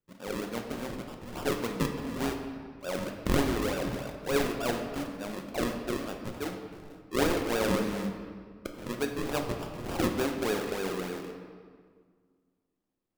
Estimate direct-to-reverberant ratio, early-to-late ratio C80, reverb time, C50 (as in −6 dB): 3.0 dB, 7.0 dB, 1.8 s, 5.5 dB